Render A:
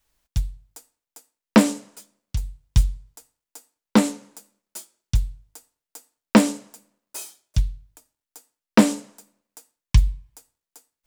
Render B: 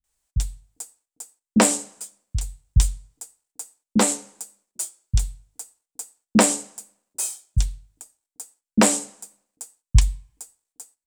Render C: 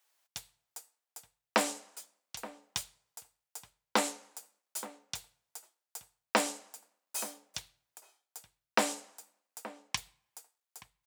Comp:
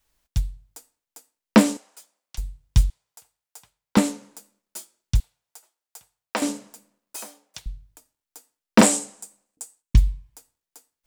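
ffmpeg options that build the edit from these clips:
-filter_complex "[2:a]asplit=4[a][b][c][d];[0:a]asplit=6[e][f][g][h][i][j];[e]atrim=end=1.772[k];[a]atrim=start=1.768:end=2.382[l];[f]atrim=start=2.378:end=2.902[m];[b]atrim=start=2.898:end=3.972[n];[g]atrim=start=3.968:end=5.202[o];[c]atrim=start=5.198:end=6.422[p];[h]atrim=start=6.418:end=7.162[q];[d]atrim=start=7.158:end=7.662[r];[i]atrim=start=7.658:end=8.812[s];[1:a]atrim=start=8.808:end=9.952[t];[j]atrim=start=9.948[u];[k][l]acrossfade=d=0.004:c1=hsin:c2=hsin[v];[v][m]acrossfade=d=0.004:c1=hsin:c2=hsin[w];[w][n]acrossfade=d=0.004:c1=hsin:c2=hsin[x];[x][o]acrossfade=d=0.004:c1=hsin:c2=hsin[y];[y][p]acrossfade=d=0.004:c1=hsin:c2=hsin[z];[z][q]acrossfade=d=0.004:c1=hsin:c2=hsin[aa];[aa][r]acrossfade=d=0.004:c1=hsin:c2=hsin[ab];[ab][s]acrossfade=d=0.004:c1=hsin:c2=hsin[ac];[ac][t]acrossfade=d=0.004:c1=hsin:c2=hsin[ad];[ad][u]acrossfade=d=0.004:c1=hsin:c2=hsin"

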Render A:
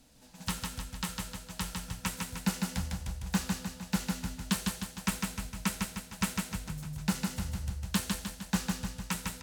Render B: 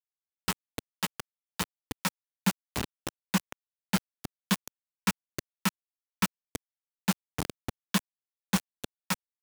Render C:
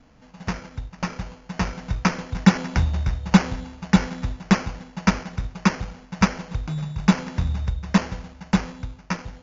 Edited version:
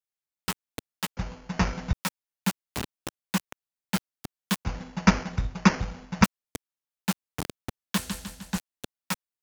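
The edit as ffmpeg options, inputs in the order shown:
-filter_complex "[2:a]asplit=2[a][b];[1:a]asplit=4[c][d][e][f];[c]atrim=end=1.172[g];[a]atrim=start=1.168:end=1.932[h];[d]atrim=start=1.928:end=4.652[i];[b]atrim=start=4.648:end=6.242[j];[e]atrim=start=6.238:end=7.982[k];[0:a]atrim=start=7.978:end=8.582[l];[f]atrim=start=8.578[m];[g][h]acrossfade=d=0.004:c1=hsin:c2=hsin[n];[n][i]acrossfade=d=0.004:c1=hsin:c2=hsin[o];[o][j]acrossfade=d=0.004:c1=hsin:c2=hsin[p];[p][k]acrossfade=d=0.004:c1=hsin:c2=hsin[q];[q][l]acrossfade=d=0.004:c1=hsin:c2=hsin[r];[r][m]acrossfade=d=0.004:c1=hsin:c2=hsin"

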